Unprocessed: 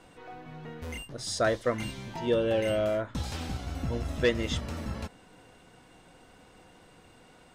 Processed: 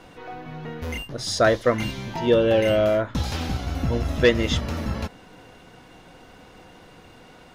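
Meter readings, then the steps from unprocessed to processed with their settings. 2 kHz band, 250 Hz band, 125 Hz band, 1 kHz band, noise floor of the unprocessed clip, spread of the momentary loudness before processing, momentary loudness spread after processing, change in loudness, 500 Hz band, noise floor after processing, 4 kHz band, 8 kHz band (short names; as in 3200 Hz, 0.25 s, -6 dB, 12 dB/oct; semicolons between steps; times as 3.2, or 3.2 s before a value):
+8.0 dB, +8.0 dB, +8.0 dB, +8.0 dB, -57 dBFS, 17 LU, 17 LU, +8.0 dB, +8.0 dB, -49 dBFS, +8.0 dB, +5.0 dB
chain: bell 8300 Hz -11 dB 0.27 oct; gain +8 dB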